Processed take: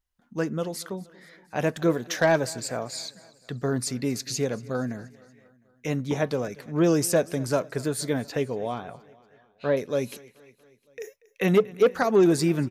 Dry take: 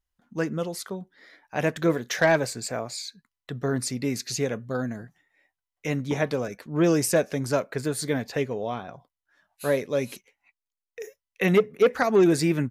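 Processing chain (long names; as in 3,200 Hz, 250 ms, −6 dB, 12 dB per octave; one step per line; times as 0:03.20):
0:08.85–0:09.77: low-pass filter 3,700 Hz 24 dB per octave
repeating echo 236 ms, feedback 60%, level −22.5 dB
dynamic equaliser 2,100 Hz, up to −5 dB, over −43 dBFS, Q 2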